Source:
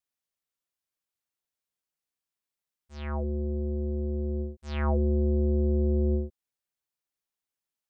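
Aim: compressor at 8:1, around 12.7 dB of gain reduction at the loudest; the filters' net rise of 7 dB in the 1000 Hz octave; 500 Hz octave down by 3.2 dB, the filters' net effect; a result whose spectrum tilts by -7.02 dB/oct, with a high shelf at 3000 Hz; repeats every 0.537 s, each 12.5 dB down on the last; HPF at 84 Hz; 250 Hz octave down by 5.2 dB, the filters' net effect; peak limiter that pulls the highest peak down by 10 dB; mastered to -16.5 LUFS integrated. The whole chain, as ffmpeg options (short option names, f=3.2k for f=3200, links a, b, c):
-af "highpass=84,equalizer=f=250:t=o:g=-6.5,equalizer=f=500:t=o:g=-3.5,equalizer=f=1k:t=o:g=9,highshelf=f=3k:g=8,acompressor=threshold=-34dB:ratio=8,alimiter=level_in=8.5dB:limit=-24dB:level=0:latency=1,volume=-8.5dB,aecho=1:1:537|1074|1611:0.237|0.0569|0.0137,volume=27dB"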